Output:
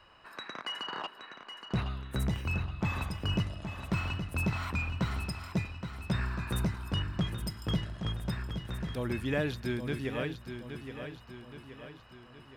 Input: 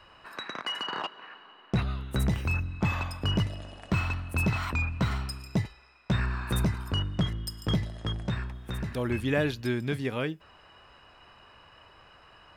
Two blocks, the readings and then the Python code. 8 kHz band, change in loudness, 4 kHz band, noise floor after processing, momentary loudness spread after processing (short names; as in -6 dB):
-3.5 dB, -4.0 dB, -4.0 dB, -54 dBFS, 15 LU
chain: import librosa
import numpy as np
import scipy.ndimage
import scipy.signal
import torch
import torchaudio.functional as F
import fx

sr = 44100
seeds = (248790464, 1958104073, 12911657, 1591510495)

y = fx.echo_feedback(x, sr, ms=821, feedback_pct=50, wet_db=-8.5)
y = y * 10.0 ** (-4.5 / 20.0)